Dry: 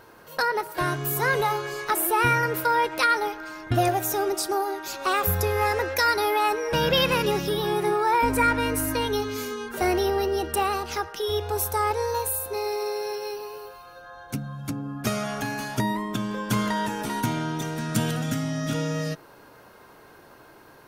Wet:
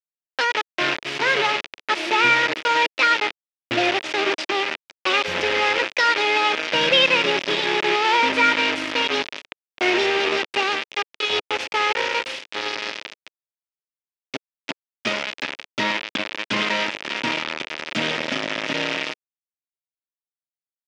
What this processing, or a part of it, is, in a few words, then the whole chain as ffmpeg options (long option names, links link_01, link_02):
hand-held game console: -af "acrusher=bits=3:mix=0:aa=0.000001,highpass=410,equalizer=frequency=450:width_type=q:width=4:gain=-6,equalizer=frequency=750:width_type=q:width=4:gain=-10,equalizer=frequency=1100:width_type=q:width=4:gain=-8,equalizer=frequency=1500:width_type=q:width=4:gain=-5,equalizer=frequency=2500:width_type=q:width=4:gain=3,equalizer=frequency=4200:width_type=q:width=4:gain=-5,lowpass=frequency=4300:width=0.5412,lowpass=frequency=4300:width=1.3066,volume=8dB"